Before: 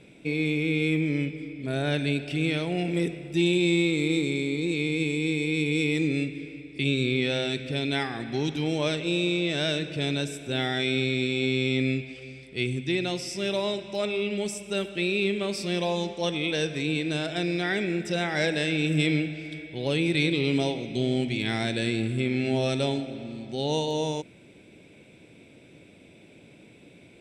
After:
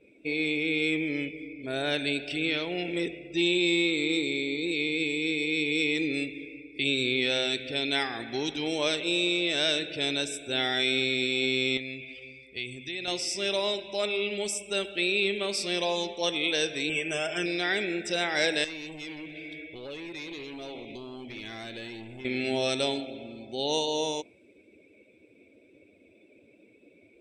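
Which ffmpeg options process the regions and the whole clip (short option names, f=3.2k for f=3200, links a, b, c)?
-filter_complex "[0:a]asettb=1/sr,asplit=3[a][b][c];[a]atrim=end=2.384[d];[b]atrim=start=2.38:end=6.14,asetpts=PTS-STARTPTS,afade=t=in:d=0.004:c=qsin,afade=t=out:st=3.756:d=0.004:c=qsin,lowpass=6.5k,equalizer=f=720:t=o:w=0.39:g=-4[e];[c]atrim=start=6.136[f];[d][e]acrossfade=d=0.004:c1=hsin:c2=qsin[g];[g][f]acrossfade=d=0.004:c1=qsin:c2=hsin,asettb=1/sr,asplit=3[h][i][j];[h]atrim=end=11.774[k];[i]atrim=start=11.77:end=13.08,asetpts=PTS-STARTPTS,afade=t=in:d=0.004:c=qsin,afade=t=out:st=1.306:d=0.004:c=qsin,highpass=46,acompressor=threshold=-28dB:ratio=4:attack=3.2:release=140:knee=1:detection=peak,equalizer=f=340:w=1.2:g=-5[l];[j]atrim=start=13.076[m];[k][l]acrossfade=d=0.004:c1=hsin:c2=qsin[n];[n][m]acrossfade=d=0.004:c1=qsin:c2=hsin,asettb=1/sr,asplit=3[o][p][q];[o]atrim=end=16.894[r];[p]atrim=start=16.89:end=17.46,asetpts=PTS-STARTPTS,afade=t=in:d=0.004:c=qsin,afade=t=out:st=0.566:d=0.004:c=qsin,asuperstop=centerf=4200:order=12:qfactor=2.3,aecho=1:1:5:0.66,atrim=end_sample=25137[s];[q]atrim=start=17.456[t];[r][s]acrossfade=d=0.004:c1=hsin:c2=qsin[u];[u][t]acrossfade=d=0.004:c1=qsin:c2=hsin,asettb=1/sr,asplit=3[v][w][x];[v]atrim=end=18.644[y];[w]atrim=start=18.64:end=22.25,asetpts=PTS-STARTPTS,afade=t=in:d=0.004:c=qsin,afade=t=out:st=3.606:d=0.004:c=qsin,acompressor=threshold=-33dB:ratio=3:attack=3.2:release=140:knee=1:detection=peak,asoftclip=type=hard:threshold=-32.5dB[z];[x]atrim=start=22.246[aa];[y][z]acrossfade=d=0.004:c1=hsin:c2=qsin[ab];[ab][aa]acrossfade=d=0.004:c1=qsin:c2=hsin,equalizer=f=150:w=1.2:g=-14,afftdn=nr=16:nf=-51,adynamicequalizer=threshold=0.00891:dfrequency=2800:dqfactor=0.7:tfrequency=2800:tqfactor=0.7:attack=5:release=100:ratio=0.375:range=2.5:mode=boostabove:tftype=highshelf"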